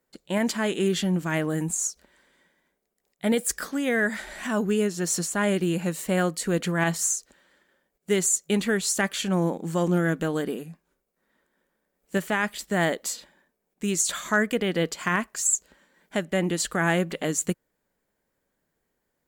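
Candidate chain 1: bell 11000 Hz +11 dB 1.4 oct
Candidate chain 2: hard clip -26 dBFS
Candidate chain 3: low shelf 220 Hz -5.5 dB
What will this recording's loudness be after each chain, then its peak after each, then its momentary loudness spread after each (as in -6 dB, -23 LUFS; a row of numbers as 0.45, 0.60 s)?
-22.5, -30.0, -27.0 LUFS; -4.0, -26.0, -11.0 dBFS; 10, 6, 7 LU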